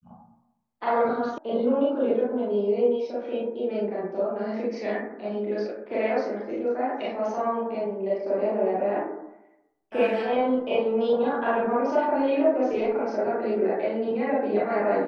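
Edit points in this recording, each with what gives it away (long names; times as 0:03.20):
0:01.38: cut off before it has died away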